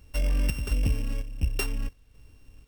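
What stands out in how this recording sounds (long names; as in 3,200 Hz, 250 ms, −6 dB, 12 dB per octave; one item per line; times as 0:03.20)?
a buzz of ramps at a fixed pitch in blocks of 16 samples
chopped level 1.4 Hz, depth 60%, duty 70%
a quantiser's noise floor 12 bits, dither none
AAC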